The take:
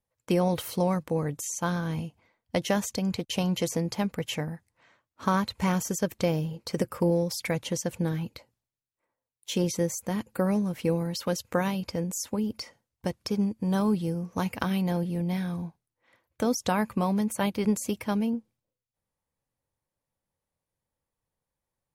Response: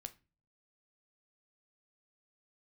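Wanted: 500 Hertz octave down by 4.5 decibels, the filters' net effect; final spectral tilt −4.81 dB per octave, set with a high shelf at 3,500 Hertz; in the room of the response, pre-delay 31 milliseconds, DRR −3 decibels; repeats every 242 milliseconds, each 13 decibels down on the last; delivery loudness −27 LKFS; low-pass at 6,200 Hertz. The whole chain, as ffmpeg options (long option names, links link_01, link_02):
-filter_complex "[0:a]lowpass=6200,equalizer=frequency=500:width_type=o:gain=-5.5,highshelf=frequency=3500:gain=7,aecho=1:1:242|484|726:0.224|0.0493|0.0108,asplit=2[link_01][link_02];[1:a]atrim=start_sample=2205,adelay=31[link_03];[link_02][link_03]afir=irnorm=-1:irlink=0,volume=8dB[link_04];[link_01][link_04]amix=inputs=2:normalize=0,volume=-2.5dB"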